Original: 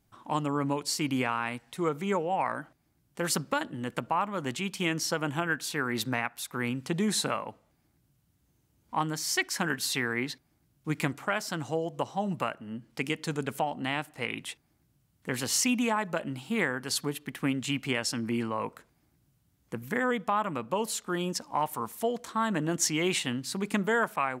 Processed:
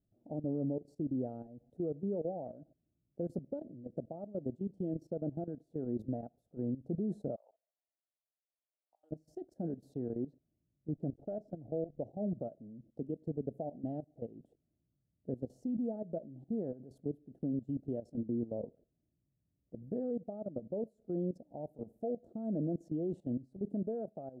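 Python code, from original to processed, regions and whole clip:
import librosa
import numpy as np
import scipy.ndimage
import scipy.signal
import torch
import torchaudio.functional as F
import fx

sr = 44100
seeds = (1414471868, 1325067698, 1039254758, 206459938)

y = fx.chain(x, sr, fx.highpass(hz=980.0, slope=24),
    fx.over_compress(threshold_db=-42.0, ratio=-0.5), at=(7.36, 9.11))
y = fx.chain(y, sr, fx.lowpass(hz=9800.0, slope=12),
    fx.high_shelf(hz=6200.0, db=-4.0),
    fx.backlash(play_db=-41.0), at=(10.88, 12.03))
y = fx.level_steps(y, sr, step_db=16)
y = scipy.signal.sosfilt(scipy.signal.ellip(4, 1.0, 40, 650.0, 'lowpass', fs=sr, output='sos'), y)
y = y * 10.0 ** (-1.0 / 20.0)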